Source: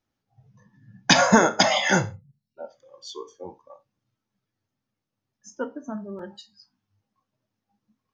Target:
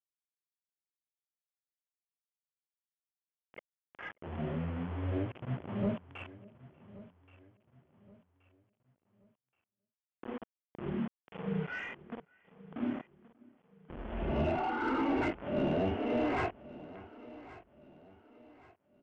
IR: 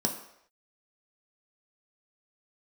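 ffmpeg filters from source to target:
-filter_complex "[0:a]areverse,acompressor=threshold=-28dB:ratio=6,flanger=delay=9.1:depth=2.6:regen=-36:speed=1.7:shape=triangular,aresample=16000,acrusher=bits=7:mix=0:aa=0.000001,aresample=44100,asplit=2[link_01][link_02];[link_02]adelay=250.7,volume=-27dB,highshelf=frequency=4000:gain=-5.64[link_03];[link_01][link_03]amix=inputs=2:normalize=0,asplit=2[link_04][link_05];[link_05]highpass=frequency=720:poles=1,volume=17dB,asoftclip=type=tanh:threshold=-21dB[link_06];[link_04][link_06]amix=inputs=2:normalize=0,lowpass=frequency=1700:poles=1,volume=-6dB,asplit=2[link_07][link_08];[link_08]aecho=0:1:481|962|1443:0.112|0.0426|0.0162[link_09];[link_07][link_09]amix=inputs=2:normalize=0,asetrate=18846,aresample=44100"

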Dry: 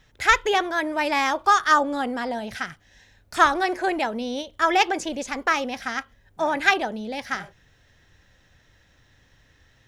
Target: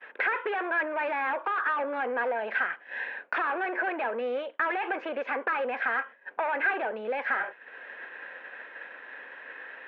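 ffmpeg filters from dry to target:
ffmpeg -i in.wav -filter_complex "[0:a]asplit=2[link_01][link_02];[link_02]highpass=frequency=720:poles=1,volume=33dB,asoftclip=type=tanh:threshold=-1dB[link_03];[link_01][link_03]amix=inputs=2:normalize=0,lowpass=frequency=1100:poles=1,volume=-6dB,acompressor=threshold=-30dB:ratio=4,highpass=frequency=280:width=0.5412,highpass=frequency=280:width=1.3066,equalizer=frequency=310:width_type=q:width=4:gain=-4,equalizer=frequency=500:width_type=q:width=4:gain=5,equalizer=frequency=1000:width_type=q:width=4:gain=4,equalizer=frequency=1600:width_type=q:width=4:gain=10,equalizer=frequency=2500:width_type=q:width=4:gain=7,lowpass=frequency=2800:width=0.5412,lowpass=frequency=2800:width=1.3066,agate=range=-33dB:threshold=-32dB:ratio=3:detection=peak,volume=-4.5dB" out.wav

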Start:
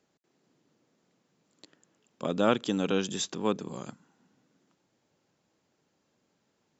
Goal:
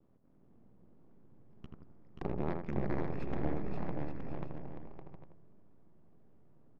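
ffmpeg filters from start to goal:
ffmpeg -i in.wav -filter_complex "[0:a]adynamicequalizer=threshold=0.002:dfrequency=2300:dqfactor=3.4:tfrequency=2300:tqfactor=3.4:attack=5:release=100:ratio=0.375:range=3.5:mode=boostabove:tftype=bell,acompressor=threshold=-42dB:ratio=6,aeval=exprs='max(val(0),0)':channel_layout=same,adynamicsmooth=sensitivity=6:basefreq=1200,asplit=2[link_01][link_02];[link_02]aecho=0:1:530|874.5|1098|1244|1339:0.631|0.398|0.251|0.158|0.1[link_03];[link_01][link_03]amix=inputs=2:normalize=0,asetrate=31183,aresample=44100,atempo=1.41421,asplit=2[link_04][link_05];[link_05]adelay=81,lowpass=frequency=1300:poles=1,volume=-3.5dB,asplit=2[link_06][link_07];[link_07]adelay=81,lowpass=frequency=1300:poles=1,volume=0.29,asplit=2[link_08][link_09];[link_09]adelay=81,lowpass=frequency=1300:poles=1,volume=0.29,asplit=2[link_10][link_11];[link_11]adelay=81,lowpass=frequency=1300:poles=1,volume=0.29[link_12];[link_06][link_08][link_10][link_12]amix=inputs=4:normalize=0[link_13];[link_04][link_13]amix=inputs=2:normalize=0,volume=10.5dB" out.wav

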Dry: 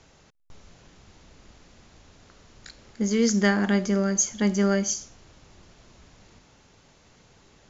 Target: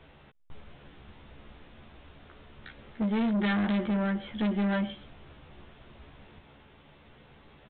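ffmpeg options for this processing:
ffmpeg -i in.wav -filter_complex "[0:a]asplit=2[link_01][link_02];[link_02]adelay=14,volume=-2.5dB[link_03];[link_01][link_03]amix=inputs=2:normalize=0,aresample=8000,asoftclip=type=tanh:threshold=-24.5dB,aresample=44100" out.wav

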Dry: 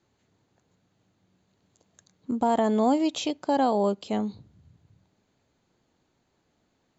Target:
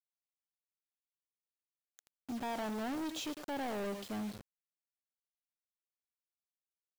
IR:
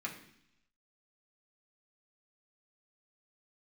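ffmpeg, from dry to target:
-af "aecho=1:1:105:0.158,asoftclip=type=tanh:threshold=-29dB,acrusher=bits=6:mix=0:aa=0.000001,volume=-6.5dB"

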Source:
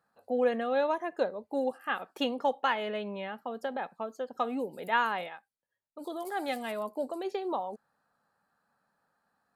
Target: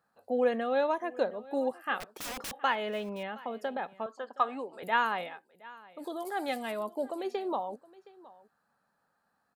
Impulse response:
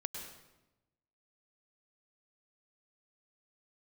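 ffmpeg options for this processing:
-filter_complex "[0:a]asettb=1/sr,asplit=3[link_01][link_02][link_03];[link_01]atrim=end=2.004[link_04];[link_02]atrim=start=2:end=2.6,asetpts=PTS-STARTPTS,afade=type=in:duration=0.004:curve=qsin,afade=type=out:start_time=0.596:duration=0.004:curve=qsin,aeval=exprs='(mod(47.3*val(0)+1,2)-1)/47.3':channel_layout=same[link_05];[link_03]atrim=start=2.596[link_06];[link_04][link_05]acrossfade=duration=0.004:curve1=hsin:curve2=qsin[link_07];[link_07][link_06]acrossfade=duration=0.004:curve1=qsin:curve2=hsin,asettb=1/sr,asplit=3[link_08][link_09][link_10];[link_08]atrim=end=4.064[link_11];[link_09]atrim=start=4.06:end=4.83,asetpts=PTS-STARTPTS,afade=type=in:duration=0.004:curve=qsin,afade=type=out:start_time=0.766:duration=0.004:curve=qsin,highpass=380,equalizer=frequency=500:width_type=q:width=4:gain=-4,equalizer=frequency=1100:width_type=q:width=4:gain=9,equalizer=frequency=1700:width_type=q:width=4:gain=6,equalizer=frequency=6200:width_type=q:width=4:gain=-8,lowpass=frequency=7900:width=0.5412,lowpass=frequency=7900:width=1.3066[link_12];[link_10]atrim=start=4.826[link_13];[link_11][link_12]acrossfade=duration=0.004:curve1=hsin:curve2=qsin[link_14];[link_14][link_13]acrossfade=duration=0.004:curve1=qsin:curve2=hsin,aecho=1:1:718:0.0891"

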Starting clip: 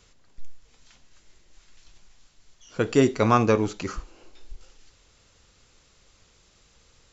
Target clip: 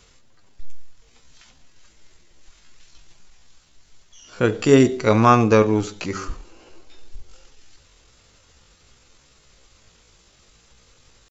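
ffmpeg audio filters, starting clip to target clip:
ffmpeg -i in.wav -af "atempo=0.63,bandreject=frequency=95.25:width_type=h:width=4,bandreject=frequency=190.5:width_type=h:width=4,bandreject=frequency=285.75:width_type=h:width=4,bandreject=frequency=381:width_type=h:width=4,bandreject=frequency=476.25:width_type=h:width=4,bandreject=frequency=571.5:width_type=h:width=4,bandreject=frequency=666.75:width_type=h:width=4,volume=5dB" out.wav

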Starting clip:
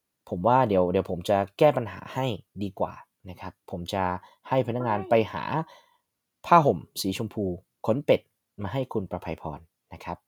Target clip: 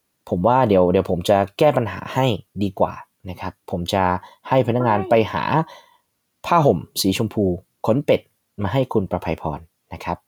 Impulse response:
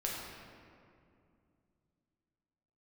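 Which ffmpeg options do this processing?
-af "alimiter=level_in=12.5dB:limit=-1dB:release=50:level=0:latency=1,volume=-3dB"

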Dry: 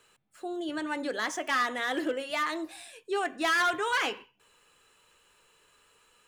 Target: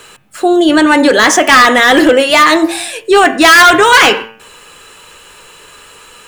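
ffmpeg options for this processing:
ffmpeg -i in.wav -af "bandreject=frequency=112.4:width_type=h:width=4,bandreject=frequency=224.8:width_type=h:width=4,bandreject=frequency=337.2:width_type=h:width=4,bandreject=frequency=449.6:width_type=h:width=4,bandreject=frequency=562:width_type=h:width=4,bandreject=frequency=674.4:width_type=h:width=4,bandreject=frequency=786.8:width_type=h:width=4,bandreject=frequency=899.2:width_type=h:width=4,bandreject=frequency=1011.6:width_type=h:width=4,bandreject=frequency=1124:width_type=h:width=4,bandreject=frequency=1236.4:width_type=h:width=4,bandreject=frequency=1348.8:width_type=h:width=4,bandreject=frequency=1461.2:width_type=h:width=4,bandreject=frequency=1573.6:width_type=h:width=4,bandreject=frequency=1686:width_type=h:width=4,bandreject=frequency=1798.4:width_type=h:width=4,bandreject=frequency=1910.8:width_type=h:width=4,bandreject=frequency=2023.2:width_type=h:width=4,bandreject=frequency=2135.6:width_type=h:width=4,bandreject=frequency=2248:width_type=h:width=4,bandreject=frequency=2360.4:width_type=h:width=4,bandreject=frequency=2472.8:width_type=h:width=4,bandreject=frequency=2585.2:width_type=h:width=4,bandreject=frequency=2697.6:width_type=h:width=4,bandreject=frequency=2810:width_type=h:width=4,bandreject=frequency=2922.4:width_type=h:width=4,bandreject=frequency=3034.8:width_type=h:width=4,apsyclip=28dB,volume=-1.5dB" out.wav

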